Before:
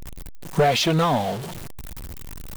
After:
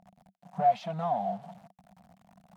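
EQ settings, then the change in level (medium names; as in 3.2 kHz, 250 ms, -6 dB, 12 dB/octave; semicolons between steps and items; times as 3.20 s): two resonant band-passes 370 Hz, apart 1.9 oct; tilt EQ +2.5 dB/octave; 0.0 dB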